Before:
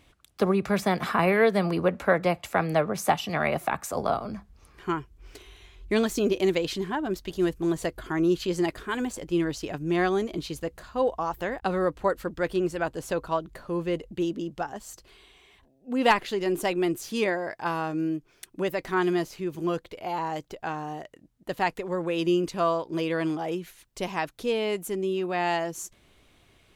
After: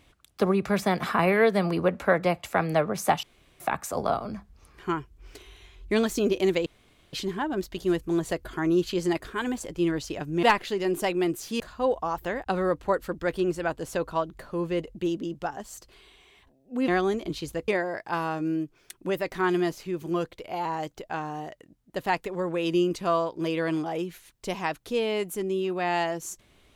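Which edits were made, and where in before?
0:03.23–0:03.60: fill with room tone
0:06.66: splice in room tone 0.47 s
0:09.96–0:10.76: swap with 0:16.04–0:17.21

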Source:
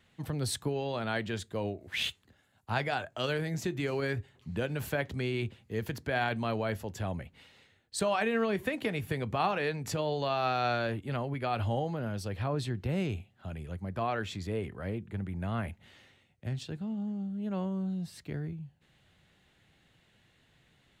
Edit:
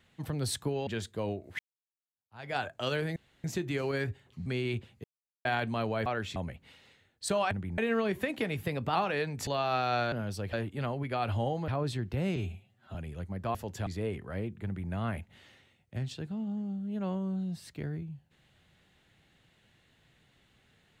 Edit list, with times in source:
0:00.87–0:01.24: remove
0:01.96–0:02.92: fade in exponential
0:03.53: splice in room tone 0.28 s
0:04.55–0:05.15: remove
0:05.73–0:06.14: silence
0:06.75–0:07.07: swap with 0:14.07–0:14.37
0:09.07–0:09.42: play speed 109%
0:09.94–0:10.19: remove
0:11.99–0:12.40: move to 0:10.84
0:13.08–0:13.47: time-stretch 1.5×
0:15.15–0:15.42: duplicate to 0:08.22

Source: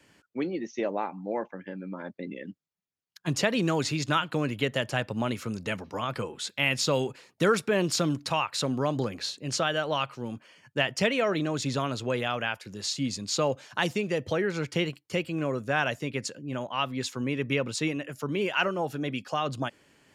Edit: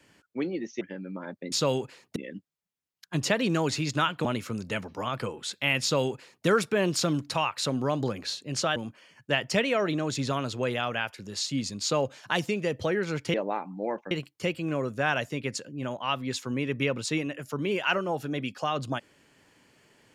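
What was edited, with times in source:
0:00.81–0:01.58: move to 0:14.81
0:04.38–0:05.21: remove
0:06.78–0:07.42: duplicate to 0:02.29
0:09.72–0:10.23: remove

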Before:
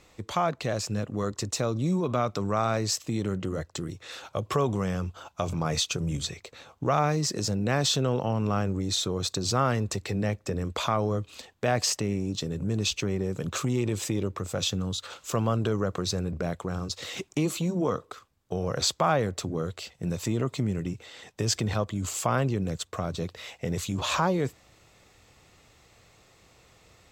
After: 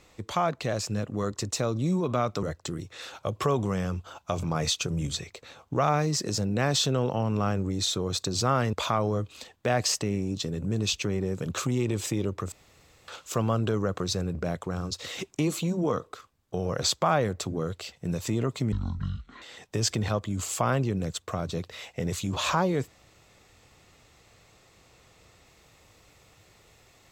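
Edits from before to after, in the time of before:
0:02.43–0:03.53: remove
0:09.83–0:10.71: remove
0:14.50–0:15.06: fill with room tone
0:20.70–0:21.07: play speed 53%

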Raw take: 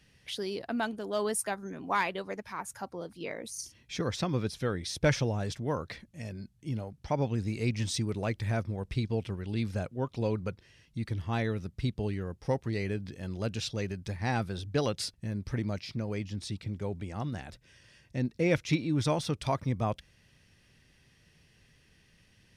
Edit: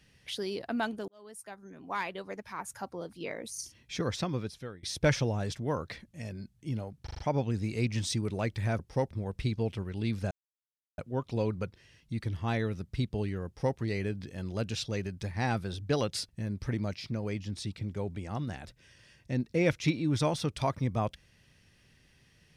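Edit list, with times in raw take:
0:01.08–0:02.78: fade in
0:04.13–0:04.83: fade out, to −21.5 dB
0:07.03: stutter 0.04 s, 5 plays
0:09.83: splice in silence 0.67 s
0:12.31–0:12.63: duplicate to 0:08.63

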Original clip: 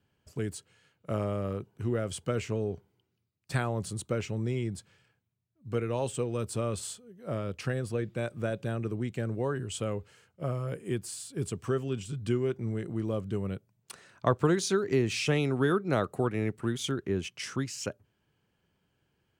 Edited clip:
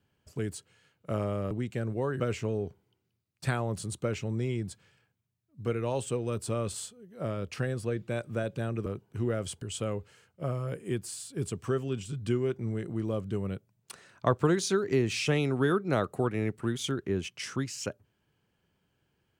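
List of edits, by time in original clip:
0:01.51–0:02.27: swap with 0:08.93–0:09.62

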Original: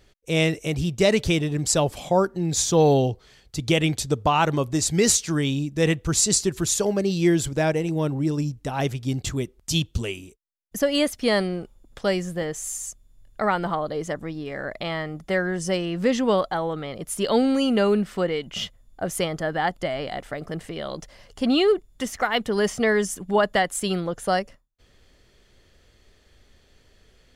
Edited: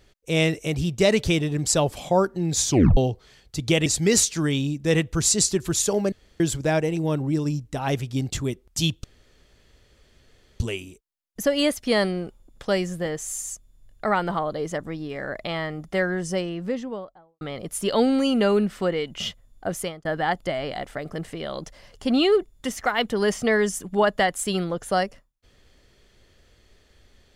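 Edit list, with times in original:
0:02.69: tape stop 0.28 s
0:03.86–0:04.78: remove
0:07.04–0:07.32: fill with room tone
0:09.96: splice in room tone 1.56 s
0:15.39–0:16.77: fade out and dull
0:19.07–0:19.41: fade out

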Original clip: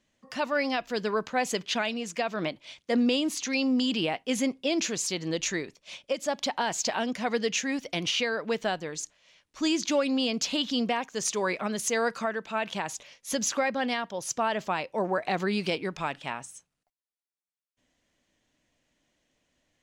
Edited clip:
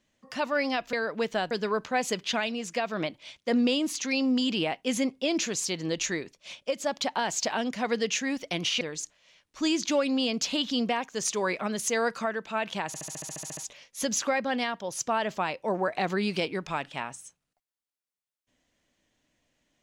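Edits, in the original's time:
0:08.23–0:08.81: move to 0:00.93
0:12.87: stutter 0.07 s, 11 plays

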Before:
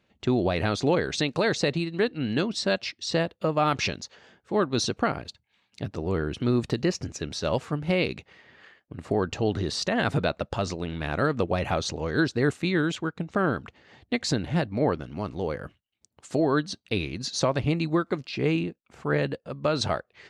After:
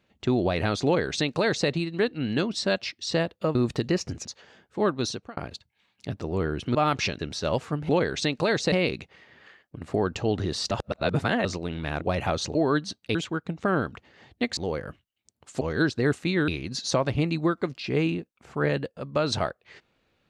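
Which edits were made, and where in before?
0:00.85–0:01.68: duplicate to 0:07.89
0:03.55–0:03.99: swap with 0:06.49–0:07.19
0:04.66–0:05.11: fade out
0:09.88–0:10.62: reverse
0:11.18–0:11.45: remove
0:11.99–0:12.86: swap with 0:16.37–0:16.97
0:14.28–0:15.33: remove

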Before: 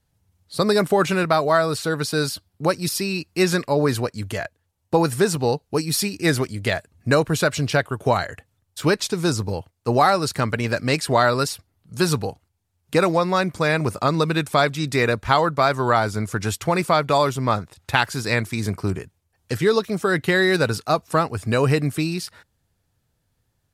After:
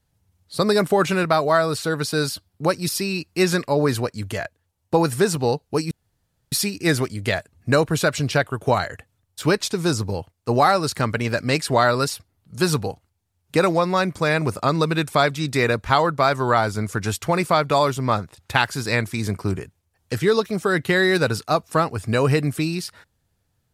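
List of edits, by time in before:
0:05.91: splice in room tone 0.61 s

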